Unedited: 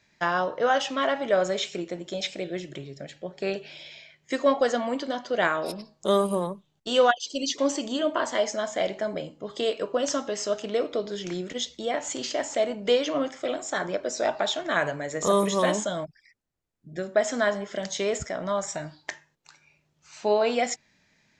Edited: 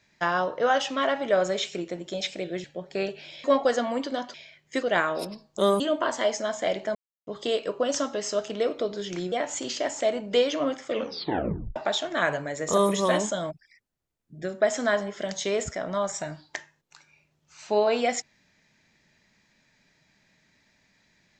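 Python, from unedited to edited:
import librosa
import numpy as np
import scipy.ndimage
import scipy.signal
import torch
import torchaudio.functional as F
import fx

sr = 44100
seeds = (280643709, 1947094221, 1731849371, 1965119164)

y = fx.edit(x, sr, fx.cut(start_s=2.64, length_s=0.47),
    fx.move(start_s=3.91, length_s=0.49, to_s=5.3),
    fx.cut(start_s=6.27, length_s=1.67),
    fx.silence(start_s=9.09, length_s=0.32),
    fx.cut(start_s=11.46, length_s=0.4),
    fx.tape_stop(start_s=13.41, length_s=0.89), tone=tone)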